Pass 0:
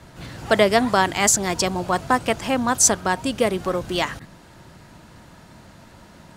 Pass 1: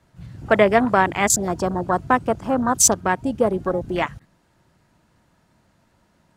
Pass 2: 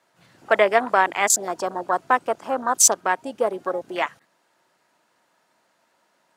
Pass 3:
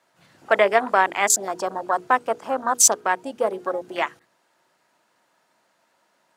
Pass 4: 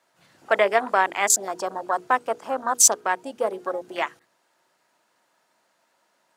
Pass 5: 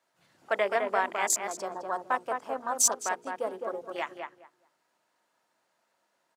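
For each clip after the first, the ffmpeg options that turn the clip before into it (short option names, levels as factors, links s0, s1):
-af "afwtdn=0.0631,equalizer=f=3900:t=o:w=0.77:g=-2,volume=1.19"
-af "highpass=490"
-af "bandreject=f=60:t=h:w=6,bandreject=f=120:t=h:w=6,bandreject=f=180:t=h:w=6,bandreject=f=240:t=h:w=6,bandreject=f=300:t=h:w=6,bandreject=f=360:t=h:w=6,bandreject=f=420:t=h:w=6,bandreject=f=480:t=h:w=6"
-af "bass=f=250:g=-3,treble=f=4000:g=2,volume=0.794"
-filter_complex "[0:a]asplit=2[s0][s1];[s1]adelay=210,lowpass=f=1800:p=1,volume=0.631,asplit=2[s2][s3];[s3]adelay=210,lowpass=f=1800:p=1,volume=0.19,asplit=2[s4][s5];[s5]adelay=210,lowpass=f=1800:p=1,volume=0.19[s6];[s0][s2][s4][s6]amix=inputs=4:normalize=0,volume=0.398"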